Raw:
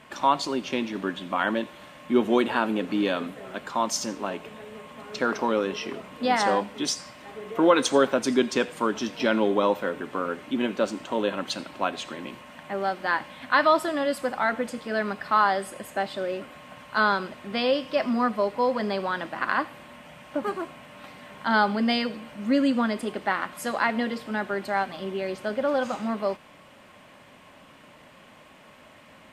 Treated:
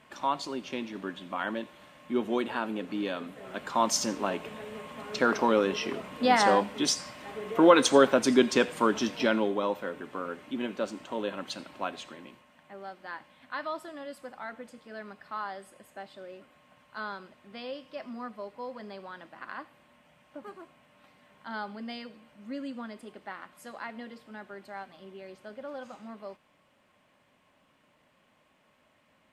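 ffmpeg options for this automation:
-af "volume=0.5dB,afade=t=in:st=3.26:d=0.61:silence=0.398107,afade=t=out:st=9.04:d=0.5:silence=0.421697,afade=t=out:st=11.91:d=0.57:silence=0.375837"

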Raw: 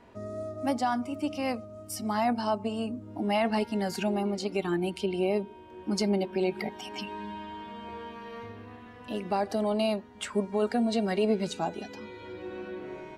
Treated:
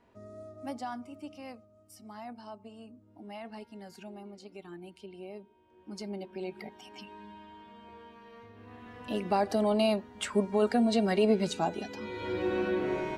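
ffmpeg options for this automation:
-af "volume=16dB,afade=t=out:st=0.88:d=0.84:silence=0.446684,afade=t=in:st=5.55:d=0.94:silence=0.446684,afade=t=in:st=8.52:d=0.44:silence=0.281838,afade=t=in:st=11.97:d=0.4:silence=0.398107"

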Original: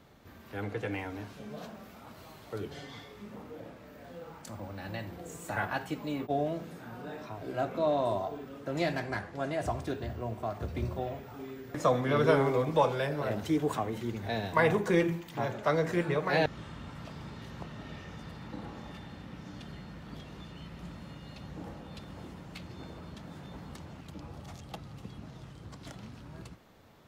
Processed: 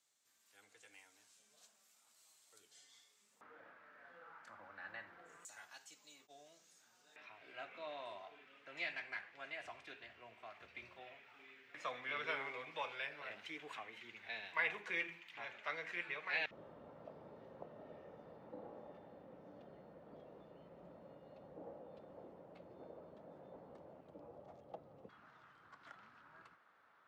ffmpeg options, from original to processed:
-af "asetnsamples=n=441:p=0,asendcmd='3.41 bandpass f 1500;5.45 bandpass f 6700;7.16 bandpass f 2400;16.51 bandpass f 550;25.09 bandpass f 1400',bandpass=f=7.8k:t=q:w=2.9:csg=0"

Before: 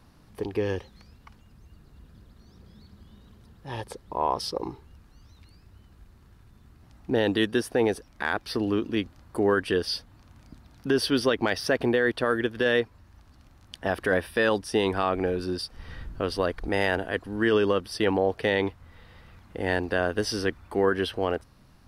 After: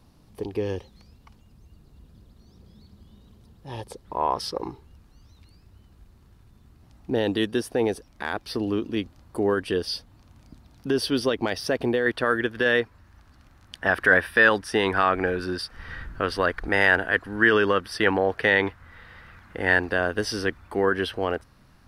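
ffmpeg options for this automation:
-af "asetnsamples=n=441:p=0,asendcmd='4.05 equalizer g 5;4.71 equalizer g -3.5;12.06 equalizer g 5;13.82 equalizer g 11.5;19.89 equalizer g 4',equalizer=f=1.6k:t=o:w=1.1:g=-6.5"

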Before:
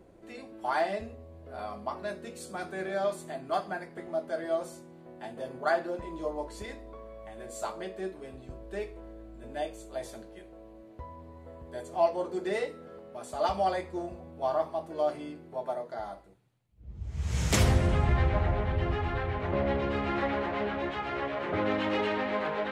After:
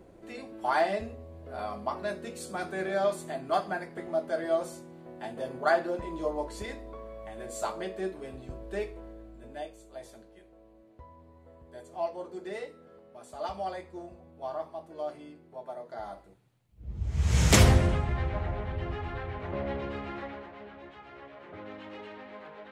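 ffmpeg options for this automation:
-af "volume=15.5dB,afade=t=out:st=8.79:d=0.94:silence=0.334965,afade=t=in:st=15.72:d=1.22:silence=0.223872,afade=t=out:st=17.53:d=0.52:silence=0.281838,afade=t=out:st=19.82:d=0.7:silence=0.316228"

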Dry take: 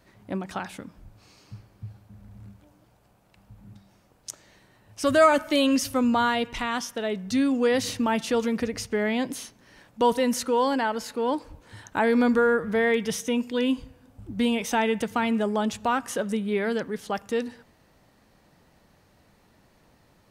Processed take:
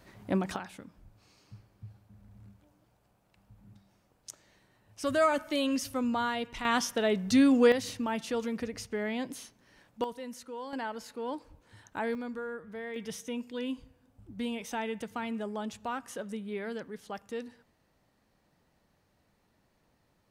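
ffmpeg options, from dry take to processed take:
-af "asetnsamples=n=441:p=0,asendcmd='0.56 volume volume -8dB;6.65 volume volume 1dB;7.72 volume volume -8dB;10.04 volume volume -18dB;10.73 volume volume -10.5dB;12.15 volume volume -17.5dB;12.96 volume volume -11dB',volume=2dB"

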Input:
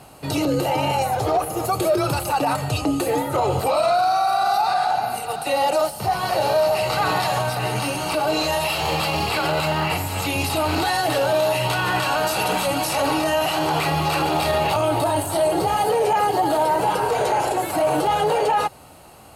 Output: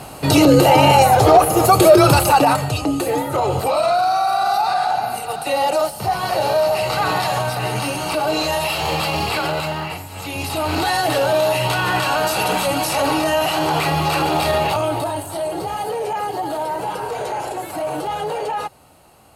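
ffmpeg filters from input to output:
-af "volume=21.5dB,afade=t=out:st=2.21:d=0.52:silence=0.375837,afade=t=out:st=9.33:d=0.75:silence=0.298538,afade=t=in:st=10.08:d=0.84:silence=0.266073,afade=t=out:st=14.55:d=0.67:silence=0.446684"

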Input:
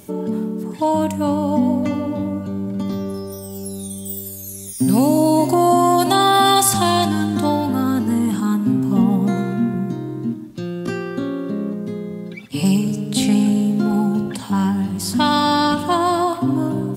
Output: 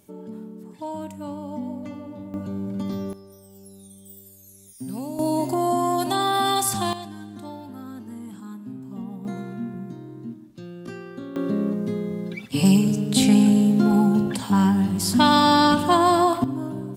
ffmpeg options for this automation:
-af "asetnsamples=n=441:p=0,asendcmd='2.34 volume volume -5dB;3.13 volume volume -17dB;5.19 volume volume -8dB;6.93 volume volume -19dB;9.25 volume volume -12dB;11.36 volume volume 0dB;16.44 volume volume -9.5dB',volume=-14.5dB"

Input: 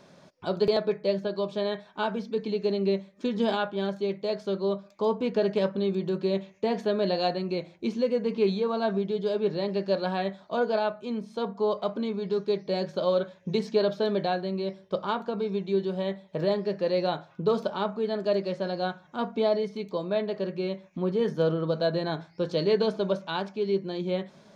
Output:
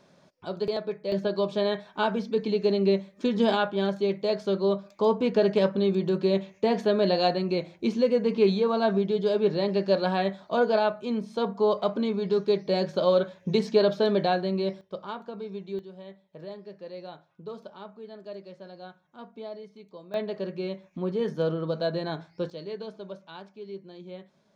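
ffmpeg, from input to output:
-af "asetnsamples=n=441:p=0,asendcmd='1.12 volume volume 3dB;14.81 volume volume -7.5dB;15.79 volume volume -14.5dB;20.14 volume volume -2dB;22.5 volume volume -13dB',volume=-5dB"

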